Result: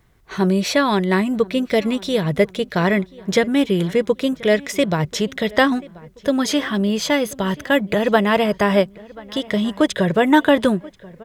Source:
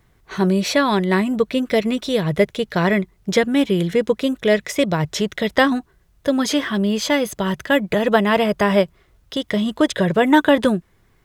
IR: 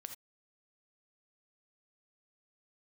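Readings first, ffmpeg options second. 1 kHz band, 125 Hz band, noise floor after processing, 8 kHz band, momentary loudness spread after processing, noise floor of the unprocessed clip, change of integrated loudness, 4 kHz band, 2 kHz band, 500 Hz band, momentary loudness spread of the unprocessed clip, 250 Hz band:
0.0 dB, 0.0 dB, −48 dBFS, 0.0 dB, 6 LU, −59 dBFS, 0.0 dB, 0.0 dB, 0.0 dB, 0.0 dB, 6 LU, 0.0 dB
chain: -filter_complex "[0:a]asplit=2[link_01][link_02];[link_02]adelay=1034,lowpass=frequency=2900:poles=1,volume=-21.5dB,asplit=2[link_03][link_04];[link_04]adelay=1034,lowpass=frequency=2900:poles=1,volume=0.45,asplit=2[link_05][link_06];[link_06]adelay=1034,lowpass=frequency=2900:poles=1,volume=0.45[link_07];[link_01][link_03][link_05][link_07]amix=inputs=4:normalize=0"

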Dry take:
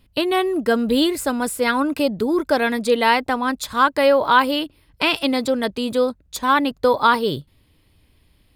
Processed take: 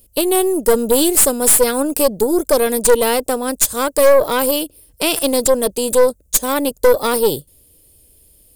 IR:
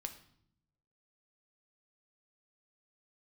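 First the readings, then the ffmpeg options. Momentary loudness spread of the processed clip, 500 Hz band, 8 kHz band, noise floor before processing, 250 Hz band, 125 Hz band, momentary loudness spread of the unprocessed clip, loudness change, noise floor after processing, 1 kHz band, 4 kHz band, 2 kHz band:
7 LU, +6.0 dB, +18.5 dB, −59 dBFS, +0.5 dB, can't be measured, 6 LU, +4.5 dB, −54 dBFS, −3.0 dB, +1.0 dB, −3.5 dB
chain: -af "equalizer=frequency=125:width_type=o:width=1:gain=-5,equalizer=frequency=250:width_type=o:width=1:gain=-4,equalizer=frequency=500:width_type=o:width=1:gain=9,equalizer=frequency=1000:width_type=o:width=1:gain=-11,equalizer=frequency=2000:width_type=o:width=1:gain=-12,equalizer=frequency=4000:width_type=o:width=1:gain=-10,equalizer=frequency=8000:width_type=o:width=1:gain=6,crystalizer=i=4.5:c=0,aeval=exprs='1.33*(cos(1*acos(clip(val(0)/1.33,-1,1)))-cos(1*PI/2))+0.531*(cos(5*acos(clip(val(0)/1.33,-1,1)))-cos(5*PI/2))+0.237*(cos(8*acos(clip(val(0)/1.33,-1,1)))-cos(8*PI/2))':channel_layout=same,volume=-6.5dB"

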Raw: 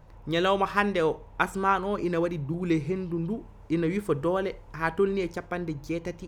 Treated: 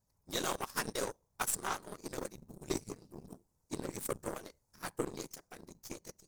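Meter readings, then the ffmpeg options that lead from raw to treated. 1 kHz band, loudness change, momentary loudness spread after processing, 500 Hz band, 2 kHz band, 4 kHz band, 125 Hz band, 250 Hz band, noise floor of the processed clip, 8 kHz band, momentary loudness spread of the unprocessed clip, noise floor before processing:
−13.5 dB, −12.0 dB, 17 LU, −15.0 dB, −13.0 dB, −6.0 dB, −17.0 dB, −16.0 dB, −79 dBFS, can't be measured, 9 LU, −49 dBFS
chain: -af "aexciter=amount=11.6:drive=7:freq=4600,afftfilt=real='hypot(re,im)*cos(2*PI*random(0))':imag='hypot(re,im)*sin(2*PI*random(1))':win_size=512:overlap=0.75,aeval=exprs='0.2*(cos(1*acos(clip(val(0)/0.2,-1,1)))-cos(1*PI/2))+0.0178*(cos(4*acos(clip(val(0)/0.2,-1,1)))-cos(4*PI/2))+0.0282*(cos(5*acos(clip(val(0)/0.2,-1,1)))-cos(5*PI/2))+0.0447*(cos(7*acos(clip(val(0)/0.2,-1,1)))-cos(7*PI/2))':channel_layout=same,volume=-6.5dB"

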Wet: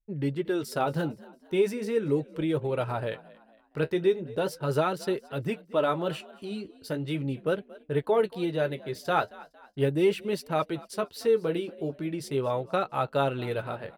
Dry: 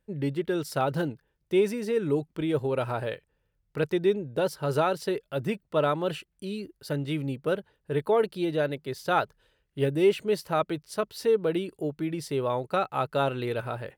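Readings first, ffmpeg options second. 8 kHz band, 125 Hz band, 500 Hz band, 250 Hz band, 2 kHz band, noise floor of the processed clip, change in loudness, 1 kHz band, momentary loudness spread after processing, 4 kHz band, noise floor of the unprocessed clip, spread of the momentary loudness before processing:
−1.0 dB, −0.5 dB, −1.0 dB, −1.0 dB, −1.0 dB, −59 dBFS, −1.0 dB, −1.0 dB, 9 LU, −1.0 dB, −75 dBFS, 9 LU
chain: -filter_complex "[0:a]anlmdn=0.0158,flanger=delay=5.7:depth=7.6:regen=-43:speed=0.39:shape=sinusoidal,asplit=2[link_01][link_02];[link_02]asplit=3[link_03][link_04][link_05];[link_03]adelay=229,afreqshift=50,volume=-21dB[link_06];[link_04]adelay=458,afreqshift=100,volume=-28.3dB[link_07];[link_05]adelay=687,afreqshift=150,volume=-35.7dB[link_08];[link_06][link_07][link_08]amix=inputs=3:normalize=0[link_09];[link_01][link_09]amix=inputs=2:normalize=0,volume=3dB"

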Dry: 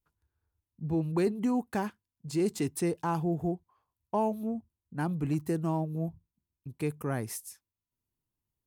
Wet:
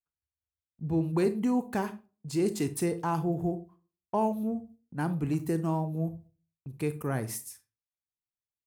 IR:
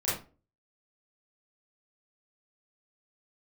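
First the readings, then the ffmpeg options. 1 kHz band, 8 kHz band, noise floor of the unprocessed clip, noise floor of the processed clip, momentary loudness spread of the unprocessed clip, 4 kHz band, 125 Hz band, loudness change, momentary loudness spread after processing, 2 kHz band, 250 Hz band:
+1.0 dB, +1.5 dB, below −85 dBFS, below −85 dBFS, 11 LU, +1.0 dB, +1.0 dB, +1.0 dB, 12 LU, +1.0 dB, +1.5 dB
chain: -filter_complex "[0:a]agate=range=-22dB:threshold=-56dB:ratio=16:detection=peak,asplit=2[link_01][link_02];[1:a]atrim=start_sample=2205,highshelf=frequency=8000:gain=9[link_03];[link_02][link_03]afir=irnorm=-1:irlink=0,volume=-18.5dB[link_04];[link_01][link_04]amix=inputs=2:normalize=0"

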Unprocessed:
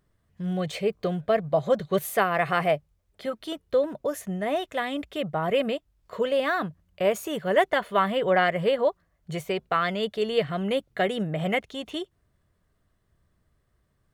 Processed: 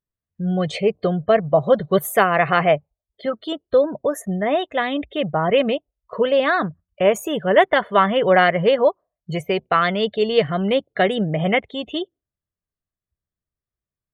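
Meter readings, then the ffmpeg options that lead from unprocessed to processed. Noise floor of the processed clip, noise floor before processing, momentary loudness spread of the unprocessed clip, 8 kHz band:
below −85 dBFS, −71 dBFS, 11 LU, +4.5 dB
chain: -af "afftdn=noise_reduction=29:noise_floor=-43,volume=7dB"

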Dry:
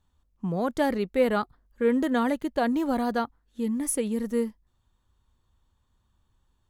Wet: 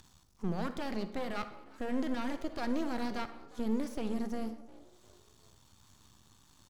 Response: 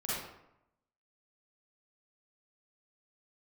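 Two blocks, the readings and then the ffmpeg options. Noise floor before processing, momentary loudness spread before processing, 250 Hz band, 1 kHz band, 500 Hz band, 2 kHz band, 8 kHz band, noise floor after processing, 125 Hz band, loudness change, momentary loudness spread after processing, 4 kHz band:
−72 dBFS, 8 LU, −8.5 dB, −10.5 dB, −13.0 dB, −9.5 dB, −18.5 dB, −64 dBFS, can't be measured, −10.0 dB, 8 LU, −5.5 dB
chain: -filter_complex "[0:a]equalizer=frequency=500:width_type=o:width=1:gain=-7,equalizer=frequency=2000:width_type=o:width=1:gain=-5,equalizer=frequency=4000:width_type=o:width=1:gain=-4,acompressor=mode=upward:threshold=-38dB:ratio=2.5,equalizer=frequency=5300:width=0.98:gain=13,alimiter=limit=-23.5dB:level=0:latency=1:release=30,acrossover=split=4500[link_01][link_02];[link_02]acompressor=threshold=-57dB:ratio=4:attack=1:release=60[link_03];[link_01][link_03]amix=inputs=2:normalize=0,highpass=110,asplit=4[link_04][link_05][link_06][link_07];[link_05]adelay=355,afreqshift=65,volume=-22dB[link_08];[link_06]adelay=710,afreqshift=130,volume=-29.7dB[link_09];[link_07]adelay=1065,afreqshift=195,volume=-37.5dB[link_10];[link_04][link_08][link_09][link_10]amix=inputs=4:normalize=0,aeval=exprs='max(val(0),0)':channel_layout=same,asplit=2[link_11][link_12];[1:a]atrim=start_sample=2205[link_13];[link_12][link_13]afir=irnorm=-1:irlink=0,volume=-13.5dB[link_14];[link_11][link_14]amix=inputs=2:normalize=0"

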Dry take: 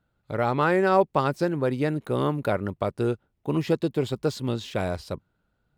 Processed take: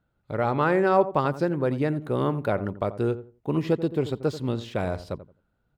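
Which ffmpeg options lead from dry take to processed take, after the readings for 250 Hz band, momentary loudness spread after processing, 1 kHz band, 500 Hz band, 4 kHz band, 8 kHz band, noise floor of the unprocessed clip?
0.0 dB, 9 LU, −0.5 dB, 0.0 dB, −4.0 dB, can't be measured, −75 dBFS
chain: -filter_complex "[0:a]highshelf=frequency=3300:gain=-7.5,asplit=2[link_01][link_02];[link_02]adelay=86,lowpass=frequency=1000:poles=1,volume=-12.5dB,asplit=2[link_03][link_04];[link_04]adelay=86,lowpass=frequency=1000:poles=1,volume=0.24,asplit=2[link_05][link_06];[link_06]adelay=86,lowpass=frequency=1000:poles=1,volume=0.24[link_07];[link_03][link_05][link_07]amix=inputs=3:normalize=0[link_08];[link_01][link_08]amix=inputs=2:normalize=0"

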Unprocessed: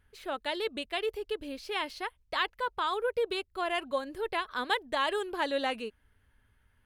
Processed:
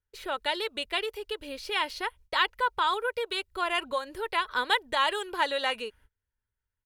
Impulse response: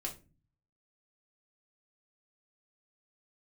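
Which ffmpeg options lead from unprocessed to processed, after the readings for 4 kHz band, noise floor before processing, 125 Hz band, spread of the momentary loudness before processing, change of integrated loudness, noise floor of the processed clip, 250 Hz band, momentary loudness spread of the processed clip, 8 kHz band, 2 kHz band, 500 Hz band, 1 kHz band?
+5.5 dB, −69 dBFS, can't be measured, 7 LU, +3.5 dB, below −85 dBFS, −3.0 dB, 9 LU, +5.5 dB, +5.0 dB, −0.5 dB, +4.5 dB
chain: -filter_complex "[0:a]agate=range=-27dB:threshold=-57dB:ratio=16:detection=peak,aecho=1:1:2.1:0.36,acrossover=split=730|1800[link_01][link_02][link_03];[link_01]acompressor=threshold=-42dB:ratio=6[link_04];[link_04][link_02][link_03]amix=inputs=3:normalize=0,volume=5dB"

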